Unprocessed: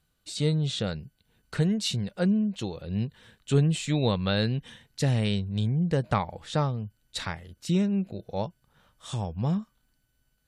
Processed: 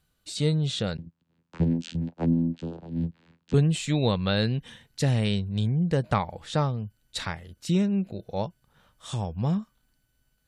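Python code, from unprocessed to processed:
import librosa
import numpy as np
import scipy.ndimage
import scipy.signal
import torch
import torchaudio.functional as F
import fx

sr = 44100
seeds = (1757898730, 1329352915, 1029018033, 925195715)

y = fx.vocoder(x, sr, bands=8, carrier='saw', carrier_hz=83.3, at=(0.97, 3.54))
y = F.gain(torch.from_numpy(y), 1.0).numpy()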